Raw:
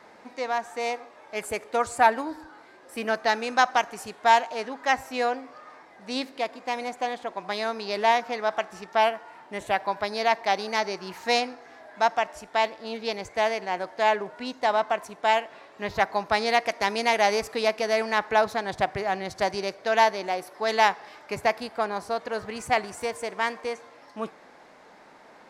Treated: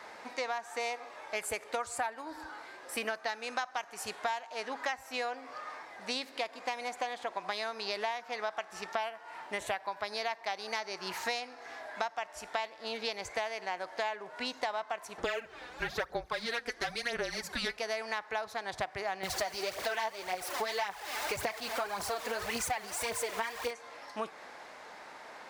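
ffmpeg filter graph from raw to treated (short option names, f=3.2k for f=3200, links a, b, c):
-filter_complex "[0:a]asettb=1/sr,asplit=3[a][b][c];[a]atrim=end=15.184[d];[b]atrim=start=15.18:end=17.77,asetpts=PTS-STARTPTS,afade=t=in:d=0.004:c=qsin,afade=t=out:st=2.586:d=0.004:c=qsin,aphaser=in_gain=1:out_gain=1:delay=4.1:decay=0.62:speed=1:type=sinusoidal,afreqshift=-240[e];[c]atrim=start=17.766[f];[d][e]acrossfade=d=0.004:c1=hsin:c2=qsin[g];[g][f]acrossfade=d=0.004:c1=qsin:c2=hsin,asettb=1/sr,asplit=3[h][i][j];[h]atrim=end=19.234[k];[i]atrim=start=19.23:end=23.71,asetpts=PTS-STARTPTS,afade=t=in:d=0.004:c=qsin,afade=t=out:st=4.476:d=0.004:c=qsin,aeval=exprs='val(0)+0.5*0.0237*sgn(val(0))':c=same,aphaser=in_gain=1:out_gain=1:delay=4.7:decay=0.58:speed=1.8:type=triangular[l];[j]atrim=start=23.706[m];[k][l]acrossfade=d=0.004:c1=hsin:c2=qsin[n];[n][m]acrossfade=d=0.004:c1=qsin:c2=hsin,highpass=50,equalizer=f=190:w=0.44:g=-11,acompressor=threshold=-37dB:ratio=12,volume=5.5dB"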